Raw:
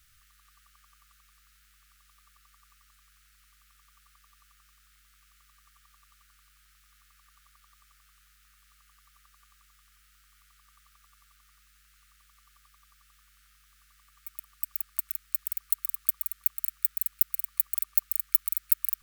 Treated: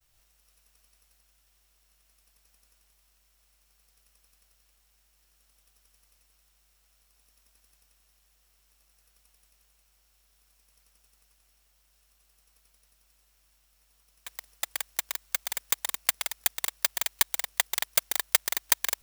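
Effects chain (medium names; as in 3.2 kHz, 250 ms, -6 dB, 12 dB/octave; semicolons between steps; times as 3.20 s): bit-reversed sample order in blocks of 64 samples; expander -57 dBFS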